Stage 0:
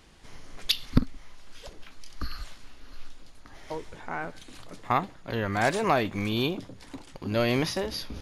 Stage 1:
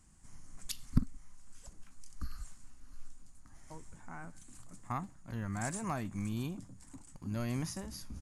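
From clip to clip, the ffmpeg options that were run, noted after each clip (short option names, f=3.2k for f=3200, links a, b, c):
-af "firequalizer=gain_entry='entry(200,0);entry(430,-16);entry(730,-10);entry(1100,-7);entry(2200,-12);entry(3600,-17);entry(7800,10);entry(13000,-6)':delay=0.05:min_phase=1,volume=-5.5dB"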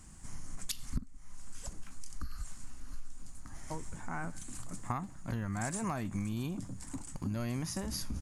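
-af "acompressor=threshold=-42dB:ratio=8,volume=10dB"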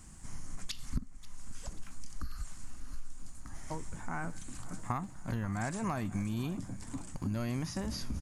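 -filter_complex "[0:a]asplit=2[a][b];[b]adelay=536,lowpass=f=4.7k:p=1,volume=-18dB,asplit=2[c][d];[d]adelay=536,lowpass=f=4.7k:p=1,volume=0.53,asplit=2[e][f];[f]adelay=536,lowpass=f=4.7k:p=1,volume=0.53,asplit=2[g][h];[h]adelay=536,lowpass=f=4.7k:p=1,volume=0.53[i];[a][c][e][g][i]amix=inputs=5:normalize=0,acrossover=split=6000[j][k];[k]acompressor=threshold=-53dB:ratio=4:attack=1:release=60[l];[j][l]amix=inputs=2:normalize=0,volume=1dB"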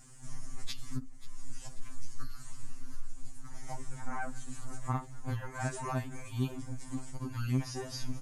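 -af "afftfilt=real='re*2.45*eq(mod(b,6),0)':imag='im*2.45*eq(mod(b,6),0)':win_size=2048:overlap=0.75,volume=2dB"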